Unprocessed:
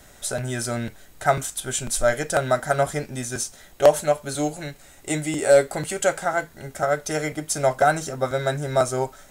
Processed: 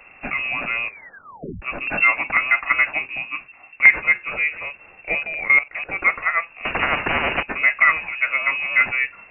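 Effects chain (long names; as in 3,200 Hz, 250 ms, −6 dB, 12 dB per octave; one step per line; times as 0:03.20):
0:03.18–0:03.85: high-frequency loss of the air 290 metres
0:05.23–0:05.93: output level in coarse steps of 15 dB
bad sample-rate conversion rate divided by 4×, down none, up zero stuff
voice inversion scrambler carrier 2,700 Hz
0:00.85: tape stop 0.77 s
0:06.65–0:07.43: every bin compressed towards the loudest bin 4 to 1
level +2.5 dB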